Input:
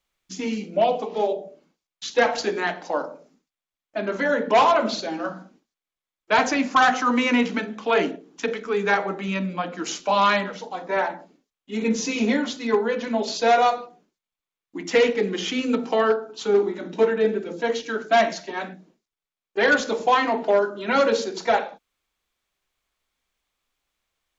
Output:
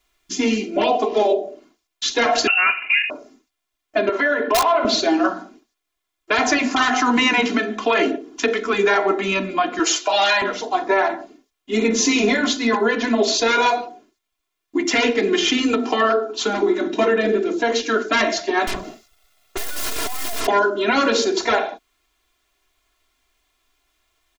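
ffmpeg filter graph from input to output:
-filter_complex "[0:a]asettb=1/sr,asplit=3[s0][s1][s2];[s0]atrim=end=2.474[s3];[s1]atrim=start=2.47:end=3.1,asetpts=PTS-STARTPTS,afade=t=in:d=0.004:c=qsin,afade=t=out:st=0.626:d=0.004:c=qsin,lowpass=f=2600:t=q:w=0.5098,lowpass=f=2600:t=q:w=0.6013,lowpass=f=2600:t=q:w=0.9,lowpass=f=2600:t=q:w=2.563,afreqshift=-3100,highpass=f=150:p=1[s4];[s2]atrim=start=3.096[s5];[s3][s4]acrossfade=d=0.004:c1=hsin:c2=qsin[s6];[s6][s5]acrossfade=d=0.004:c1=qsin:c2=hsin,asettb=1/sr,asplit=3[s7][s8][s9];[s7]atrim=end=4.094[s10];[s8]atrim=start=4.09:end=4.85,asetpts=PTS-STARTPTS,afade=t=in:d=0.004:c=qsin,afade=t=out:st=0.756:d=0.004:c=qsin,acrossover=split=310 4200:gain=0.178 1 0.178[s11][s12][s13];[s11][s12][s13]amix=inputs=3:normalize=0,aeval=exprs='(mod(2.66*val(0)+1,2)-1)/2.66':c=same,acompressor=threshold=0.0562:ratio=5:attack=3.2:release=140:knee=1:detection=peak[s14];[s9]atrim=start=4.846[s15];[s10][s14]acrossfade=d=0.004:c1=hsin:c2=qsin[s16];[s16][s15]acrossfade=d=0.004:c1=qsin:c2=hsin,asettb=1/sr,asplit=3[s17][s18][s19];[s17]atrim=end=9.794[s20];[s18]atrim=start=9.79:end=10.42,asetpts=PTS-STARTPTS,afade=t=in:d=0.004:c=qsin,afade=t=out:st=0.626:d=0.004:c=qsin,highpass=470,aecho=1:1:6.1:0.64,atrim=end_sample=27783[s21];[s19]atrim=start=10.416[s22];[s20][s21]acrossfade=d=0.004:c1=hsin:c2=qsin[s23];[s23][s22]acrossfade=d=0.004:c1=qsin:c2=hsin,asettb=1/sr,asplit=3[s24][s25][s26];[s24]atrim=end=18.674[s27];[s25]atrim=start=18.67:end=20.47,asetpts=PTS-STARTPTS,afade=t=in:d=0.004:c=qsin,afade=t=out:st=1.796:d=0.004:c=qsin,aecho=1:1:1.5:0.58,atrim=end_sample=79380,aeval=exprs='(tanh(63.1*val(0)+0.8)-tanh(0.8))/63.1':c=same,aeval=exprs='0.0266*sin(PI/2*7.94*val(0)/0.0266)':c=same[s28];[s26]atrim=start=20.466[s29];[s27][s28]acrossfade=d=0.004:c1=hsin:c2=qsin[s30];[s30][s29]acrossfade=d=0.004:c1=qsin:c2=hsin,aecho=1:1:2.9:0.88,afftfilt=real='re*lt(hypot(re,im),1.12)':imag='im*lt(hypot(re,im),1.12)':win_size=1024:overlap=0.75,alimiter=limit=0.158:level=0:latency=1:release=145,volume=2.51"

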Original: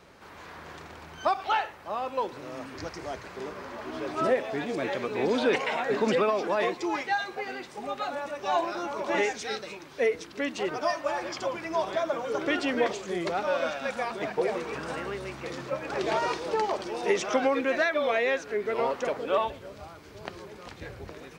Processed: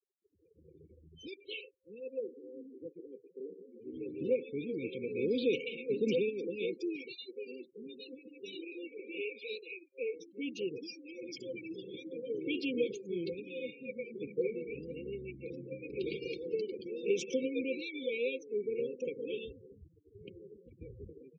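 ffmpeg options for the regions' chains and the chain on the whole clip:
-filter_complex "[0:a]asettb=1/sr,asplit=3[s0][s1][s2];[s0]atrim=end=2.004[s3];[s1]atrim=start=2:end=3.8,asetpts=PTS-STARTPTS,afade=t=in:d=0.004:c=qsin,afade=t=out:st=1.796:d=0.004:c=qsin,highpass=190,lowpass=2600,bandreject=f=50:t=h:w=6,bandreject=f=100:t=h:w=6,bandreject=f=150:t=h:w=6,bandreject=f=200:t=h:w=6,bandreject=f=250:t=h:w=6,bandreject=f=300:t=h:w=6,bandreject=f=350:t=h:w=6[s4];[s2]atrim=start=3.796[s5];[s3][s4]acrossfade=d=0.004:c1=hsin:c2=qsin[s6];[s6][s5]acrossfade=d=0.004:c1=qsin:c2=hsin,asettb=1/sr,asplit=3[s7][s8][s9];[s7]atrim=end=8.614[s10];[s8]atrim=start=8.61:end=10.16,asetpts=PTS-STARTPTS,afade=t=in:d=0.004:c=qsin,afade=t=out:st=1.546:d=0.004:c=qsin,highpass=320,equalizer=f=660:t=q:w=4:g=8,equalizer=f=1000:t=q:w=4:g=-7,equalizer=f=2500:t=q:w=4:g=7,lowpass=f=4400:w=0.5412,lowpass=f=4400:w=1.3066,acompressor=threshold=0.0501:ratio=4:attack=3.2:release=140:knee=1:detection=peak[s11];[s9]atrim=start=10.156[s12];[s10][s11]acrossfade=d=0.004:c1=hsin:c2=qsin[s13];[s13][s12]acrossfade=d=0.004:c1=qsin:c2=hsin,asettb=1/sr,asplit=3[s14][s15][s16];[s14]atrim=end=13.674[s17];[s15]atrim=start=13.67:end=14.37,asetpts=PTS-STARTPTS,afade=t=in:d=0.004:c=qsin,afade=t=out:st=0.696:d=0.004:c=qsin,lowpass=f=3400:p=1,asplit=2[s18][s19];[s19]adelay=22,volume=0.2[s20];[s18][s20]amix=inputs=2:normalize=0,atrim=end_sample=30870[s21];[s16]atrim=start=14.366[s22];[s17][s21]acrossfade=d=0.004:c1=hsin:c2=qsin[s23];[s23][s22]acrossfade=d=0.004:c1=qsin:c2=hsin,afftfilt=real='re*gte(hypot(re,im),0.0126)':imag='im*gte(hypot(re,im),0.0126)':win_size=1024:overlap=0.75,afftdn=nr=21:nf=-39,afftfilt=real='re*(1-between(b*sr/4096,530,2200))':imag='im*(1-between(b*sr/4096,530,2200))':win_size=4096:overlap=0.75,volume=0.562"

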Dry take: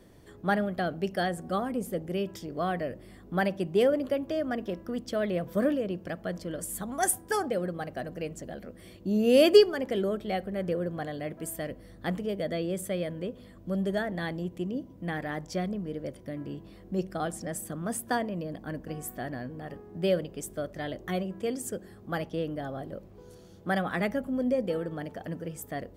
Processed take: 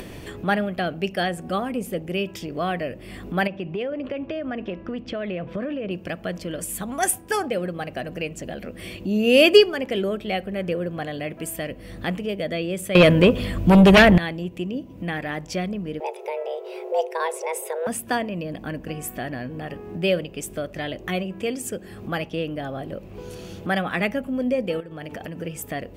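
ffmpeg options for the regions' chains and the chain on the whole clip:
-filter_complex "[0:a]asettb=1/sr,asplit=3[s0][s1][s2];[s0]atrim=end=3.474[s3];[s1]atrim=start=3.47:end=5.91,asetpts=PTS-STARTPTS,afade=t=in:d=0.004:c=qsin,afade=t=out:st=2.436:d=0.004:c=qsin,lowpass=2900,acompressor=threshold=0.0316:ratio=5:attack=3.2:release=140:knee=1:detection=peak[s4];[s2]atrim=start=5.906[s5];[s3][s4]acrossfade=d=0.004:c1=hsin:c2=qsin[s6];[s6][s5]acrossfade=d=0.004:c1=qsin:c2=hsin,asettb=1/sr,asplit=3[s7][s8][s9];[s7]atrim=end=12.954[s10];[s8]atrim=start=12.95:end=14.18,asetpts=PTS-STARTPTS,afade=t=in:d=0.004:c=qsin,afade=t=out:st=1.226:d=0.004:c=qsin,asubboost=boost=6.5:cutoff=150,acontrast=45,aeval=exprs='0.237*sin(PI/2*2.51*val(0)/0.237)':c=same[s11];[s9]atrim=start=14.176[s12];[s10][s11]acrossfade=d=0.004:c1=hsin:c2=qsin[s13];[s13][s12]acrossfade=d=0.004:c1=qsin:c2=hsin,asettb=1/sr,asplit=3[s14][s15][s16];[s14]atrim=end=16.004[s17];[s15]atrim=start=16:end=17.87,asetpts=PTS-STARTPTS,afade=t=in:d=0.004:c=qsin,afade=t=out:st=1.866:d=0.004:c=qsin,lowshelf=f=160:g=10.5,afreqshift=320[s18];[s16]atrim=start=17.866[s19];[s17][s18]acrossfade=d=0.004:c1=hsin:c2=qsin[s20];[s20][s19]acrossfade=d=0.004:c1=qsin:c2=hsin,asettb=1/sr,asplit=3[s21][s22][s23];[s21]atrim=end=24.804[s24];[s22]atrim=start=24.8:end=25.42,asetpts=PTS-STARTPTS,afade=t=in:d=0.004:c=qsin,afade=t=out:st=0.616:d=0.004:c=qsin,bandreject=f=60:t=h:w=6,bandreject=f=120:t=h:w=6,bandreject=f=180:t=h:w=6,bandreject=f=240:t=h:w=6,bandreject=f=300:t=h:w=6,bandreject=f=360:t=h:w=6,bandreject=f=420:t=h:w=6,acompressor=threshold=0.00891:ratio=6:attack=3.2:release=140:knee=1:detection=peak[s25];[s23]atrim=start=25.416[s26];[s24][s25]acrossfade=d=0.004:c1=hsin:c2=qsin[s27];[s27][s26]acrossfade=d=0.004:c1=qsin:c2=hsin,equalizer=f=2600:t=o:w=0.51:g=11.5,acompressor=mode=upward:threshold=0.0316:ratio=2.5,volume=1.58"

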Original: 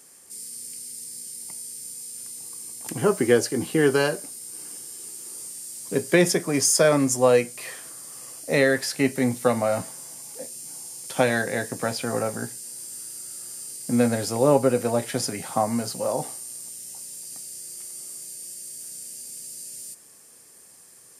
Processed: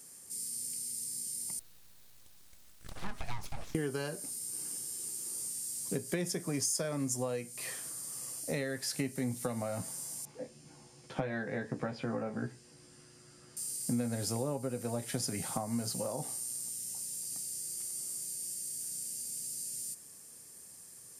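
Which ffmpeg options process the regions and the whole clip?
-filter_complex "[0:a]asettb=1/sr,asplit=3[s0][s1][s2];[s0]atrim=end=1.594[s3];[s1]atrim=start=1.59:end=3.75,asetpts=PTS-STARTPTS,afade=t=in:d=0.004:c=qsin,afade=t=out:st=2.156:d=0.004:c=qsin,acrossover=split=370 4000:gain=0.0708 1 0.0708[s4][s5][s6];[s4][s5][s6]amix=inputs=3:normalize=0,acompressor=threshold=0.0282:ratio=2:attack=3.2:release=140:knee=1:detection=peak,aeval=exprs='abs(val(0))':c=same[s7];[s2]atrim=start=3.746[s8];[s3][s7]acrossfade=d=0.004:c1=hsin:c2=qsin[s9];[s9][s8]acrossfade=d=0.004:c1=qsin:c2=hsin,asettb=1/sr,asplit=3[s10][s11][s12];[s10]atrim=end=10.254[s13];[s11]atrim=start=10.25:end=13.57,asetpts=PTS-STARTPTS,afade=t=in:d=0.004:c=qsin,afade=t=out:st=3.316:d=0.004:c=qsin,lowpass=2300,asplit=2[s14][s15];[s15]adelay=14,volume=0.631[s16];[s14][s16]amix=inputs=2:normalize=0,atrim=end_sample=146412[s17];[s12]atrim=start=13.566[s18];[s13][s17]acrossfade=d=0.004:c1=hsin:c2=qsin[s19];[s19][s18]acrossfade=d=0.004:c1=qsin:c2=hsin,acompressor=threshold=0.0398:ratio=6,bass=f=250:g=8,treble=f=4000:g=5,volume=0.473"

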